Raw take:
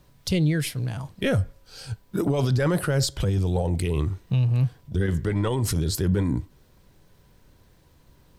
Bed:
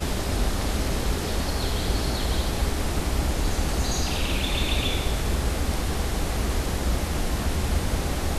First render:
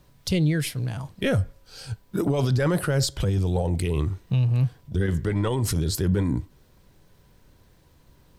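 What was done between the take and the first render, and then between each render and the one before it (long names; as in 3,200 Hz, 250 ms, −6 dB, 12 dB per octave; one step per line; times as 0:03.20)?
no processing that can be heard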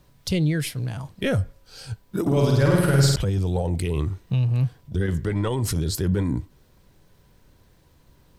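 0:02.21–0:03.16: flutter between parallel walls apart 8.7 metres, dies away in 1.2 s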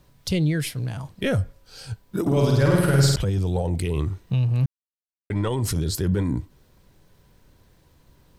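0:04.66–0:05.30: silence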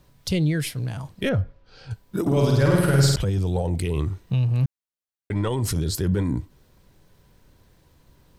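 0:01.29–0:01.91: high-frequency loss of the air 230 metres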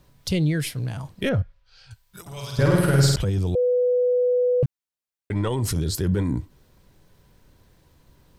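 0:01.42–0:02.59: guitar amp tone stack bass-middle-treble 10-0-10
0:03.55–0:04.63: beep over 495 Hz −17 dBFS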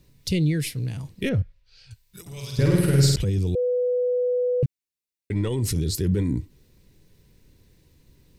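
flat-topped bell 960 Hz −10 dB
notch filter 3,200 Hz, Q 16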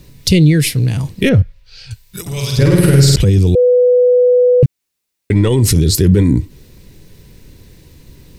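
in parallel at −1.5 dB: downward compressor, threshold −29 dBFS, peak gain reduction 14.5 dB
on the sum: boost into a limiter +10.5 dB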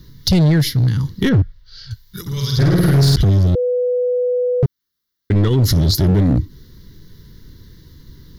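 phaser with its sweep stopped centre 2,500 Hz, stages 6
gain into a clipping stage and back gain 9.5 dB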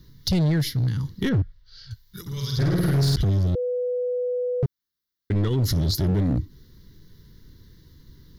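level −8 dB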